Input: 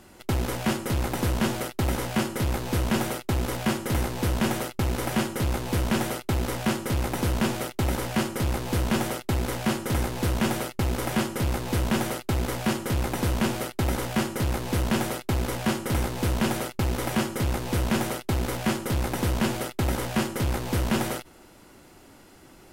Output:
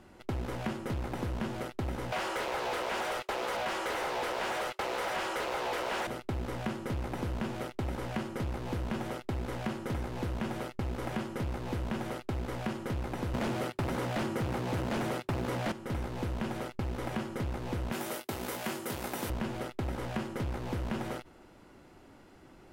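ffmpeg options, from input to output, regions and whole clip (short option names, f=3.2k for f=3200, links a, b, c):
-filter_complex "[0:a]asettb=1/sr,asplit=3[a][b][c];[a]atrim=end=2.124[d];[b]atrim=start=2.12:end=6.07,asetpts=PTS-STARTPTS,afade=t=in:d=0.004:c=qsin,afade=t=out:st=3.946:d=0.004:c=qsin,highpass=f=420:w=0.5412,highpass=f=420:w=1.3066,asplit=2[e][f];[f]highpass=f=720:p=1,volume=27dB,asoftclip=type=tanh:threshold=-15.5dB[g];[e][g]amix=inputs=2:normalize=0,lowpass=f=6.8k:p=1,volume=-6dB[h];[c]atrim=start=6.066[i];[d][h]acrossfade=d=0.004:c1=hsin:c2=qsin[j];[j][i]acrossfade=d=0.004:c1=qsin:c2=hsin,asettb=1/sr,asplit=3[k][l][m];[k]atrim=end=13.344[n];[l]atrim=start=13.34:end=15.72,asetpts=PTS-STARTPTS,afade=t=in:d=0.004:c=qsin,afade=t=out:st=2.376:d=0.004:c=qsin,highpass=f=93:w=0.5412,highpass=f=93:w=1.3066,aeval=exprs='0.266*sin(PI/2*3.55*val(0)/0.266)':c=same[o];[m]atrim=start=15.716[p];[n][o]acrossfade=d=0.004:c1=hsin:c2=qsin[q];[q][p]acrossfade=d=0.004:c1=qsin:c2=hsin,asettb=1/sr,asplit=3[r][s][t];[r]atrim=end=17.924[u];[s]atrim=start=17.92:end=19.3,asetpts=PTS-STARTPTS,afade=t=in:d=0.004:c=qsin,afade=t=out:st=1.376:d=0.004:c=qsin,highpass=49,aemphasis=mode=production:type=bsi,asplit=2[v][w];[w]adelay=21,volume=-8dB[x];[v][x]amix=inputs=2:normalize=0,atrim=end_sample=60858[y];[t]atrim=start=19.296[z];[u][y]acrossfade=d=0.004:c1=hsin:c2=qsin[aa];[aa][z]acrossfade=d=0.004:c1=qsin:c2=hsin,lowpass=f=2.3k:p=1,acompressor=threshold=-28dB:ratio=6,volume=-3.5dB"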